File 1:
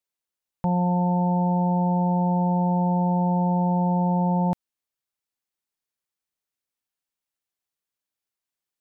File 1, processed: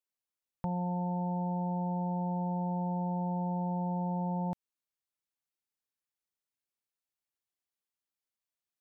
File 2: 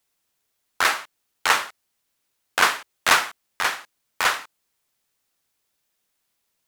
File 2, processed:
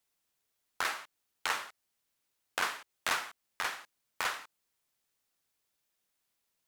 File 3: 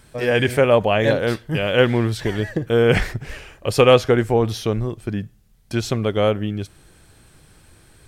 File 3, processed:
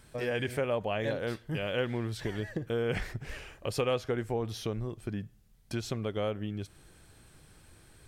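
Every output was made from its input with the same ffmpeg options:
-af "acompressor=threshold=0.0398:ratio=2,volume=0.473"

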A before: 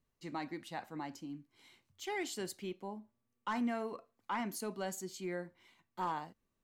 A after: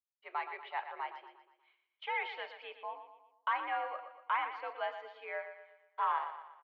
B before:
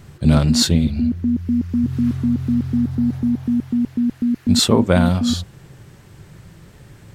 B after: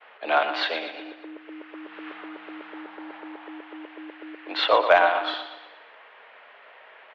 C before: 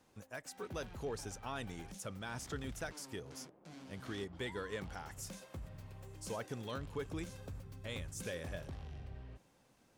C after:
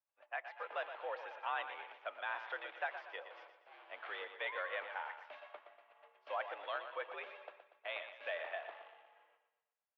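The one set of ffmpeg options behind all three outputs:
-filter_complex "[0:a]highpass=f=550:t=q:w=0.5412,highpass=f=550:t=q:w=1.307,lowpass=f=3000:t=q:w=0.5176,lowpass=f=3000:t=q:w=0.7071,lowpass=f=3000:t=q:w=1.932,afreqshift=72,agate=range=0.0224:threshold=0.00158:ratio=3:detection=peak,asplit=2[s0][s1];[s1]aecho=0:1:119|238|357|476|595:0.316|0.145|0.0669|0.0308|0.0142[s2];[s0][s2]amix=inputs=2:normalize=0,acontrast=76,volume=0.841"

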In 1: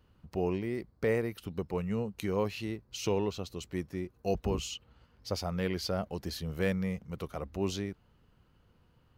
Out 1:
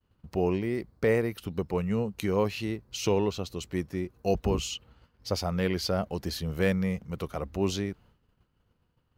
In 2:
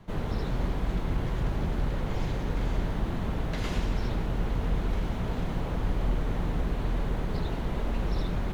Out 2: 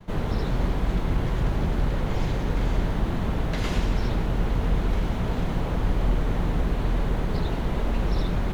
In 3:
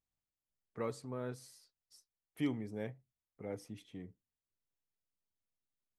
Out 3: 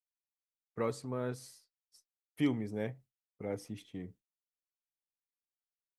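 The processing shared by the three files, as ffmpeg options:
-af "agate=range=0.0224:threshold=0.00158:ratio=3:detection=peak,volume=1.68"

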